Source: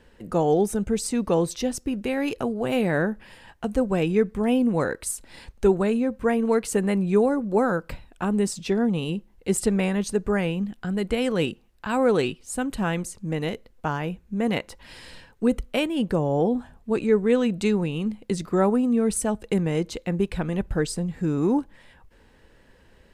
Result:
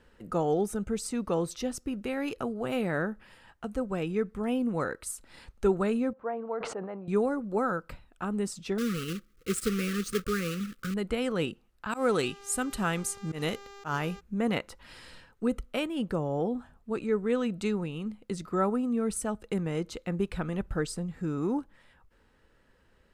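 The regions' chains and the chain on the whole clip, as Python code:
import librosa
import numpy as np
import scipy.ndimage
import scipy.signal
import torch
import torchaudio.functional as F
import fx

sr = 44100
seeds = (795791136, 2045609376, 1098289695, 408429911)

y = fx.chain(x, sr, fx.bandpass_q(hz=720.0, q=1.9),
    fx.air_absorb(metres=93.0),
    fx.sustainer(db_per_s=46.0), at=(6.13, 7.08))
y = fx.chain(y, sr, fx.block_float(bits=3),
    fx.brickwall_bandstop(low_hz=550.0, high_hz=1100.0), at=(8.78, 10.96))
y = fx.high_shelf(y, sr, hz=3800.0, db=10.0, at=(11.91, 14.19), fade=0.02)
y = fx.dmg_buzz(y, sr, base_hz=400.0, harmonics=19, level_db=-46.0, tilt_db=-5, odd_only=False, at=(11.91, 14.19), fade=0.02)
y = fx.auto_swell(y, sr, attack_ms=104.0, at=(11.91, 14.19), fade=0.02)
y = fx.rider(y, sr, range_db=10, speed_s=2.0)
y = fx.peak_eq(y, sr, hz=1300.0, db=8.5, octaves=0.28)
y = y * librosa.db_to_amplitude(-7.5)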